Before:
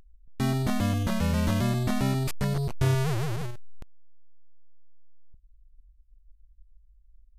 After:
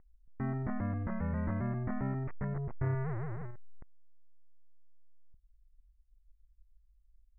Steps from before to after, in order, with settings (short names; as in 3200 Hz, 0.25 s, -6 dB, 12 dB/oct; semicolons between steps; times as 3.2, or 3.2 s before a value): Chebyshev low-pass 2000 Hz, order 5; gain -8.5 dB